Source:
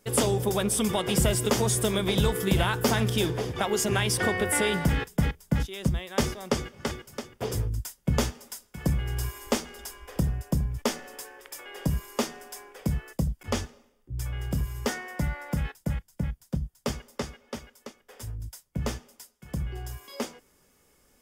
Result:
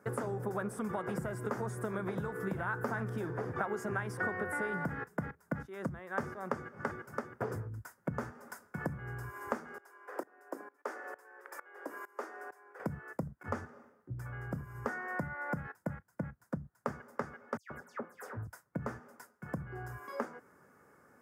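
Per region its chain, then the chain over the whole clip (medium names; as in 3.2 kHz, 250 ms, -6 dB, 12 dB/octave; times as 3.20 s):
9.78–12.80 s: steep high-pass 300 Hz 48 dB/octave + sawtooth tremolo in dB swelling 2.2 Hz, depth 22 dB
17.57–18.47 s: de-hum 174 Hz, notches 21 + phase dispersion lows, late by 135 ms, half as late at 2.9 kHz
whole clip: compression 6:1, threshold -37 dBFS; high-pass 96 Hz 24 dB/octave; resonant high shelf 2.2 kHz -13.5 dB, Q 3; trim +2.5 dB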